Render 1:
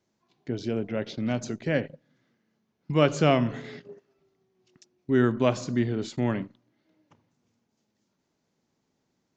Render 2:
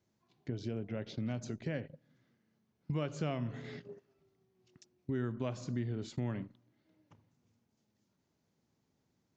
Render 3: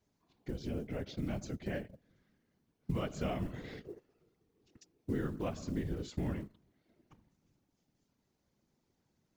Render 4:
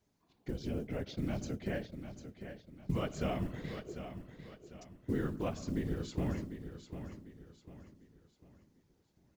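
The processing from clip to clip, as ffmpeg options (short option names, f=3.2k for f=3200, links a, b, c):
-af "acompressor=threshold=-35dB:ratio=2.5,equalizer=f=91:t=o:w=1.6:g=8.5,volume=-5dB"
-af "acrusher=bits=8:mode=log:mix=0:aa=0.000001,afftfilt=real='hypot(re,im)*cos(2*PI*random(0))':imag='hypot(re,im)*sin(2*PI*random(1))':win_size=512:overlap=0.75,volume=6dB"
-af "aecho=1:1:748|1496|2244|2992:0.316|0.117|0.0433|0.016,volume=1dB"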